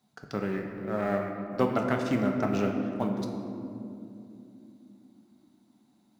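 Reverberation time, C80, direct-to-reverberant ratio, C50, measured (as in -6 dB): 2.9 s, 5.5 dB, 2.0 dB, 4.5 dB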